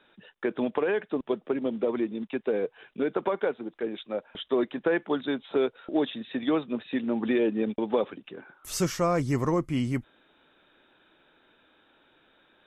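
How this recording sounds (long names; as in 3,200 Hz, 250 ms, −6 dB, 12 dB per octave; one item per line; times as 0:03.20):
background noise floor −64 dBFS
spectral slope −5.5 dB per octave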